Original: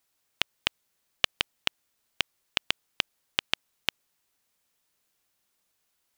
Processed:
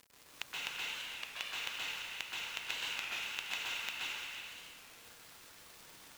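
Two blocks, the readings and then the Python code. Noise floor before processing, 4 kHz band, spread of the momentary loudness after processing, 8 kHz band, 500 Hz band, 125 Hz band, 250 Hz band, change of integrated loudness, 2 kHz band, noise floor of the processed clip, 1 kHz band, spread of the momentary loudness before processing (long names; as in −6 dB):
−76 dBFS, −8.5 dB, 16 LU, −1.5 dB, −10.5 dB, −13.0 dB, −11.5 dB, −8.0 dB, −4.5 dB, −58 dBFS, −5.5 dB, 4 LU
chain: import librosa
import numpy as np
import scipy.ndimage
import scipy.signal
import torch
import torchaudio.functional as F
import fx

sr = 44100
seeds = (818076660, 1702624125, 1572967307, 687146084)

p1 = fx.bin_expand(x, sr, power=1.5)
p2 = scipy.signal.sosfilt(scipy.signal.butter(4, 620.0, 'highpass', fs=sr, output='sos'), p1)
p3 = fx.notch(p2, sr, hz=3200.0, q=8.6)
p4 = fx.over_compress(p3, sr, threshold_db=-40.0, ratio=-1.0)
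p5 = np.clip(p4, -10.0 ** (-22.0 / 20.0), 10.0 ** (-22.0 / 20.0))
p6 = fx.dmg_crackle(p5, sr, seeds[0], per_s=180.0, level_db=-45.0)
p7 = p6 + fx.echo_stepped(p6, sr, ms=115, hz=1300.0, octaves=0.7, feedback_pct=70, wet_db=-4.0, dry=0)
p8 = fx.rev_plate(p7, sr, seeds[1], rt60_s=2.2, hf_ratio=0.95, predelay_ms=115, drr_db=-7.5)
p9 = fx.record_warp(p8, sr, rpm=33.33, depth_cents=100.0)
y = F.gain(torch.from_numpy(p9), 1.0).numpy()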